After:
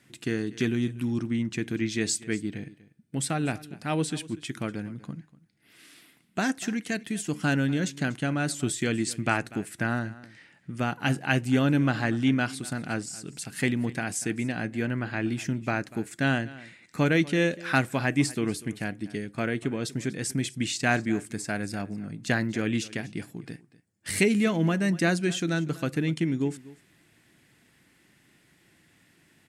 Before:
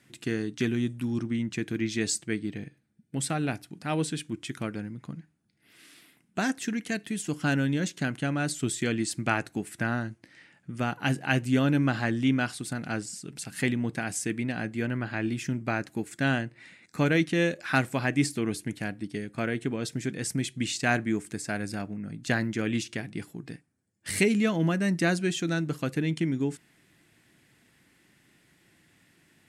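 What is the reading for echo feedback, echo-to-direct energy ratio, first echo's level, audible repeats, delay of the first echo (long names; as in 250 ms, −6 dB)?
repeats not evenly spaced, −19.5 dB, −19.5 dB, 1, 242 ms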